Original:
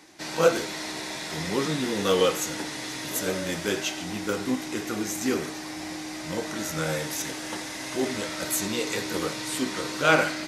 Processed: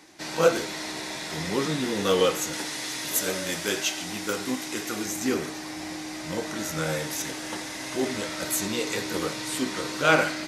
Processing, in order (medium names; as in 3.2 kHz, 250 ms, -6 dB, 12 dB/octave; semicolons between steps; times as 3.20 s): 2.53–5.06 s: tilt EQ +1.5 dB/octave